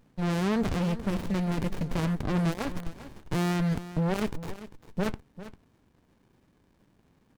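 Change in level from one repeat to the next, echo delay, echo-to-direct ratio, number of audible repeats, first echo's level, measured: repeats not evenly spaced, 397 ms, −14.5 dB, 1, −14.5 dB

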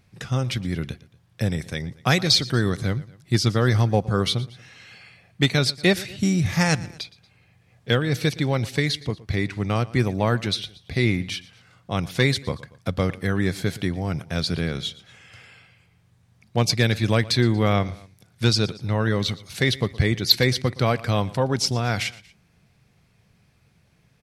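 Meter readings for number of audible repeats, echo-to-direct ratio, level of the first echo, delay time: 2, −19.0 dB, −20.0 dB, 117 ms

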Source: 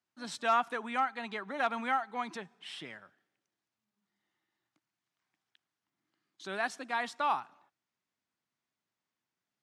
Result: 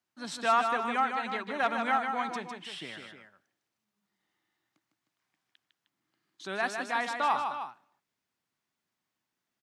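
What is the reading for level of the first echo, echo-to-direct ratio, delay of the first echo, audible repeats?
−6.0 dB, −4.5 dB, 154 ms, 2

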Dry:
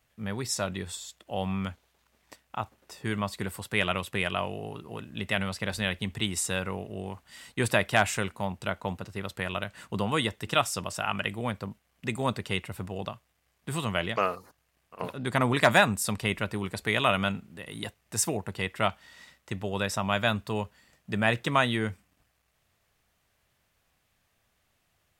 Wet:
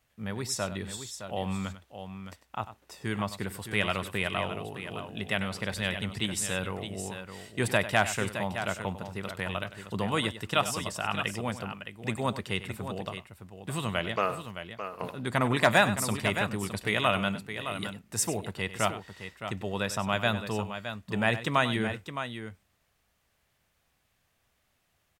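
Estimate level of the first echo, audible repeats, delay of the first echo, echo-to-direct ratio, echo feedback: −13.5 dB, 2, 97 ms, −8.0 dB, repeats not evenly spaced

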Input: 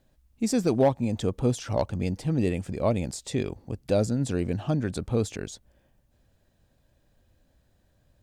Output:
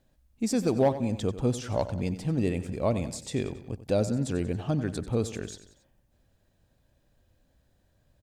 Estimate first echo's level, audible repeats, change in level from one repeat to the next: −13.5 dB, 3, −5.5 dB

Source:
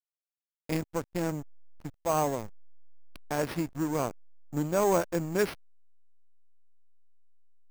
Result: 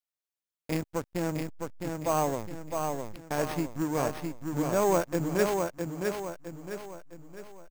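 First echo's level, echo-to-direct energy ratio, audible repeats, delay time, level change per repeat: −4.5 dB, −3.5 dB, 5, 660 ms, −7.5 dB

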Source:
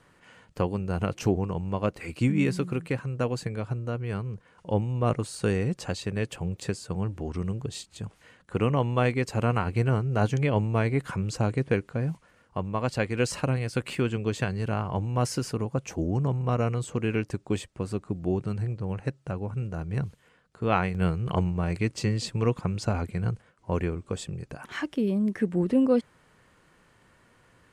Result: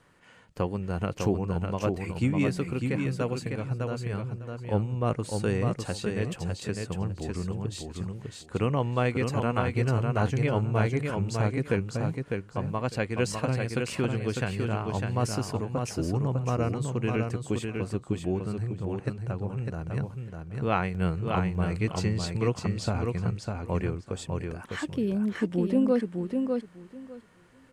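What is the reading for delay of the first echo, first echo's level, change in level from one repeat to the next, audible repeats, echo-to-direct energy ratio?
602 ms, −4.5 dB, −15.5 dB, 2, −4.5 dB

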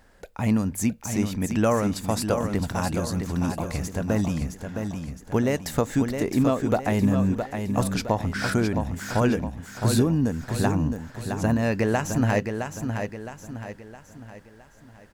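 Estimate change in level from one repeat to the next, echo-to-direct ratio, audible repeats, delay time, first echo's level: −7.5 dB, −5.5 dB, 4, 664 ms, −6.5 dB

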